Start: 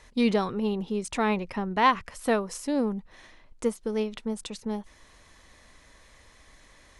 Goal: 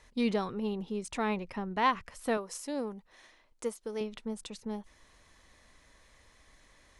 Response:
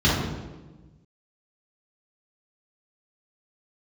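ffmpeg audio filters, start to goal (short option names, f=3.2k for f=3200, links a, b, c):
-filter_complex "[0:a]asettb=1/sr,asplit=3[a][b][c];[a]atrim=end=2.374[d];[b]atrim=start=2.37:end=4.01,asetpts=PTS-STARTPTS,afade=t=in:d=0.004:c=qsin,afade=t=out:st=1.636:d=0.004:c=qsin,bass=f=250:g=-10,treble=f=4k:g=3[e];[c]atrim=start=4.006[f];[d][e]acrossfade=d=0.004:c1=hsin:c2=qsin[g];[g][f]acrossfade=d=0.004:c1=qsin:c2=hsin,volume=-6dB"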